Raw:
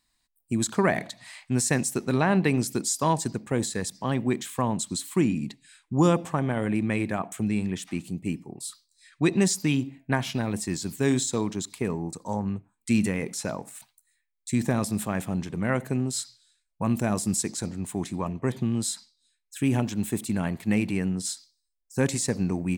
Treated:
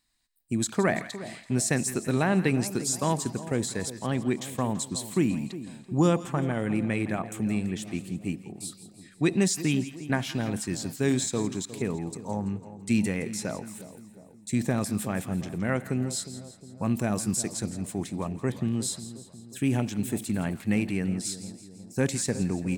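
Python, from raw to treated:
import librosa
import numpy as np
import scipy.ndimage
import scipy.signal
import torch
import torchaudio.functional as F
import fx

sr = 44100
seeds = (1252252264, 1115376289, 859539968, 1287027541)

p1 = fx.peak_eq(x, sr, hz=1000.0, db=-4.5, octaves=0.39)
p2 = p1 + fx.echo_split(p1, sr, split_hz=960.0, low_ms=359, high_ms=167, feedback_pct=52, wet_db=-14, dry=0)
y = F.gain(torch.from_numpy(p2), -1.5).numpy()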